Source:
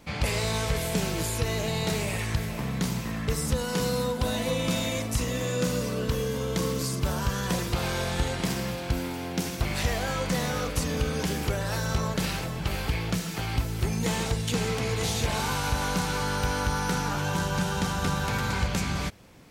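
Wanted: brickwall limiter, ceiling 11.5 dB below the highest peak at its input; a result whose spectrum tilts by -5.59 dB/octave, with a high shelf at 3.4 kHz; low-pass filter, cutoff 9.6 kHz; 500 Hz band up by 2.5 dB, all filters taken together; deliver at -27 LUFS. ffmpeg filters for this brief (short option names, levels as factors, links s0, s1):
-af "lowpass=9600,equalizer=f=500:t=o:g=3,highshelf=f=3400:g=-7,volume=2.51,alimiter=limit=0.119:level=0:latency=1"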